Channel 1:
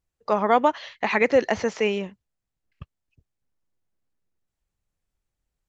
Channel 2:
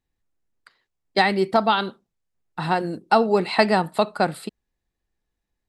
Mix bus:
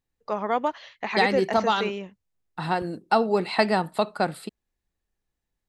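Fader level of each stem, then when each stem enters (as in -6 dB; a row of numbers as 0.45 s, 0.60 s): -6.0 dB, -3.5 dB; 0.00 s, 0.00 s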